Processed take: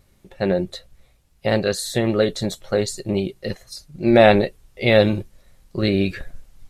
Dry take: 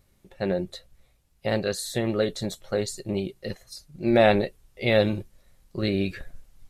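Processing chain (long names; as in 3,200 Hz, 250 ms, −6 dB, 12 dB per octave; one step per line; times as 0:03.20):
high-shelf EQ 11,000 Hz −4 dB
level +6 dB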